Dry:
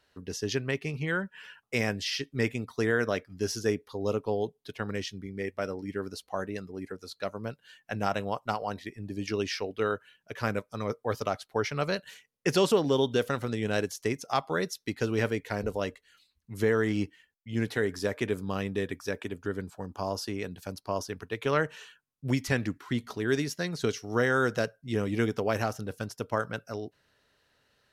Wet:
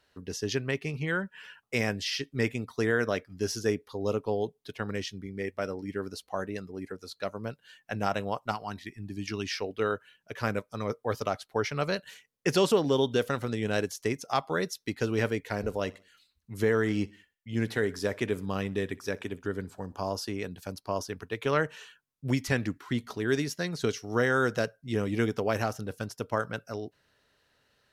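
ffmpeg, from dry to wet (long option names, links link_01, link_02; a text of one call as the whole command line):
ffmpeg -i in.wav -filter_complex "[0:a]asettb=1/sr,asplit=3[link_01][link_02][link_03];[link_01]atrim=end=8.514[link_04];[link_02]atrim=start=8.51:end=9.51,asetpts=PTS-STARTPTS,afade=type=in:duration=0.004:curve=qsin,afade=type=out:start_time=0.996:duration=0.004:curve=qsin,equalizer=frequency=520:width_type=o:width=0.66:gain=-14.5[link_05];[link_03]atrim=start=9.506[link_06];[link_04][link_05]acrossfade=duration=0.004:curve1=hsin:curve2=qsin[link_07];[link_07][link_06]acrossfade=duration=0.004:curve1=qsin:curve2=hsin,asettb=1/sr,asplit=3[link_08][link_09][link_10];[link_08]atrim=end=15.414[link_11];[link_09]atrim=start=15.41:end=20.09,asetpts=PTS-STARTPTS,afade=type=in:duration=0.004:curve=qsin,afade=type=out:start_time=4.676:duration=0.004:curve=qsin,aecho=1:1:62|124|186:0.075|0.0322|0.0139,atrim=end_sample=206388[link_12];[link_10]atrim=start=20.086[link_13];[link_11][link_12]acrossfade=duration=0.004:curve1=hsin:curve2=qsin[link_14];[link_14][link_13]acrossfade=duration=0.004:curve1=qsin:curve2=hsin" out.wav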